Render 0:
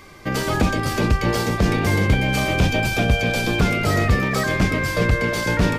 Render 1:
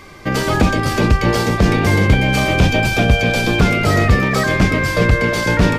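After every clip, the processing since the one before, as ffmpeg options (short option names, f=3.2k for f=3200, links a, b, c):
-af "highshelf=f=9.2k:g=-5.5,volume=5dB"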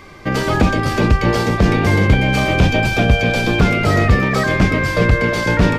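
-af "equalizer=f=13k:w=0.33:g=-6"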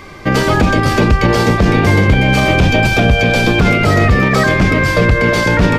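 -af "alimiter=level_in=6.5dB:limit=-1dB:release=50:level=0:latency=1,volume=-1dB"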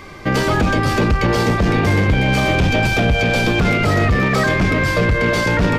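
-af "acontrast=42,volume=-8dB"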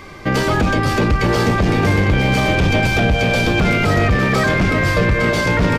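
-af "aecho=1:1:854:0.299"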